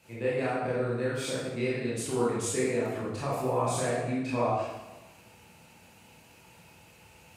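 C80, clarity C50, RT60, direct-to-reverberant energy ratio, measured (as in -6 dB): 2.5 dB, -1.5 dB, 1.1 s, -9.0 dB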